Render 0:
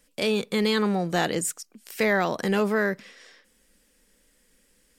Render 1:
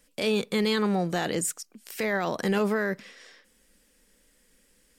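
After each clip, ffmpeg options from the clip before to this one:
-af "alimiter=limit=-18dB:level=0:latency=1:release=23"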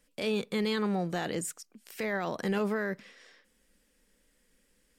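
-af "bass=f=250:g=1,treble=f=4k:g=-3,volume=-5dB"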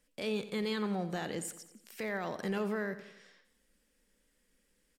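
-af "aecho=1:1:88|176|264|352|440:0.2|0.104|0.054|0.0281|0.0146,volume=-4.5dB"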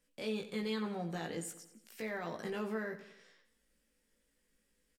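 -filter_complex "[0:a]asplit=2[a][b];[b]adelay=18,volume=-3.5dB[c];[a][c]amix=inputs=2:normalize=0,volume=-5dB"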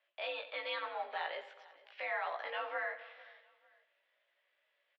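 -af "highpass=f=560:t=q:w=0.5412,highpass=f=560:t=q:w=1.307,lowpass=f=3.5k:t=q:w=0.5176,lowpass=f=3.5k:t=q:w=0.7071,lowpass=f=3.5k:t=q:w=1.932,afreqshift=73,aecho=1:1:448|896:0.0841|0.0278,volume=5.5dB"

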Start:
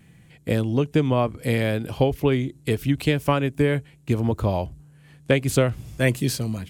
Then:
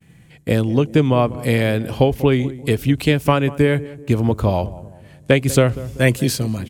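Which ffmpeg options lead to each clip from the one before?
-filter_complex "[0:a]agate=range=-33dB:threshold=-49dB:ratio=3:detection=peak,asplit=2[a][b];[b]adelay=192,lowpass=f=990:p=1,volume=-16dB,asplit=2[c][d];[d]adelay=192,lowpass=f=990:p=1,volume=0.46,asplit=2[e][f];[f]adelay=192,lowpass=f=990:p=1,volume=0.46,asplit=2[g][h];[h]adelay=192,lowpass=f=990:p=1,volume=0.46[i];[a][c][e][g][i]amix=inputs=5:normalize=0,volume=5dB"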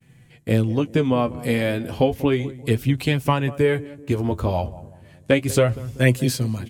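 -af "flanger=delay=7.9:depth=4.7:regen=34:speed=0.32:shape=sinusoidal"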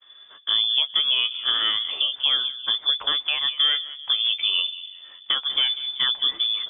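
-af "alimiter=limit=-15dB:level=0:latency=1:release=354,lowpass=f=3.1k:t=q:w=0.5098,lowpass=f=3.1k:t=q:w=0.6013,lowpass=f=3.1k:t=q:w=0.9,lowpass=f=3.1k:t=q:w=2.563,afreqshift=-3600,volume=2.5dB"

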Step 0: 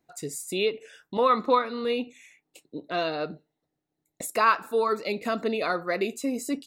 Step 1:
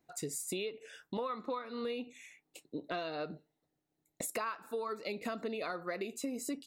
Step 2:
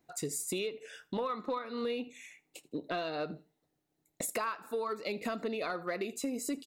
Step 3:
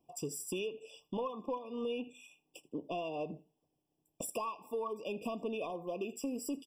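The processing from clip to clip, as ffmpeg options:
-af "acompressor=threshold=-33dB:ratio=12,volume=-1.5dB"
-filter_complex "[0:a]asplit=2[a][b];[b]asoftclip=type=hard:threshold=-32.5dB,volume=-8dB[c];[a][c]amix=inputs=2:normalize=0,aecho=1:1:80|160:0.0708|0.0184"
-af "asoftclip=type=tanh:threshold=-24dB,afftfilt=real='re*eq(mod(floor(b*sr/1024/1200),2),0)':imag='im*eq(mod(floor(b*sr/1024/1200),2),0)':win_size=1024:overlap=0.75,volume=-1.5dB"

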